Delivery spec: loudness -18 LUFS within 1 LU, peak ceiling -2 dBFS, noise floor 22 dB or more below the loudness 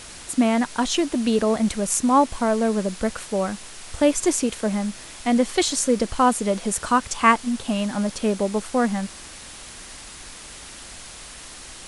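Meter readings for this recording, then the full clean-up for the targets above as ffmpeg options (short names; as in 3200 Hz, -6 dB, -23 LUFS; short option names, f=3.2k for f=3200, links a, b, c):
noise floor -41 dBFS; noise floor target -44 dBFS; loudness -22.0 LUFS; peak -2.5 dBFS; loudness target -18.0 LUFS
-> -af "afftdn=nr=6:nf=-41"
-af "volume=4dB,alimiter=limit=-2dB:level=0:latency=1"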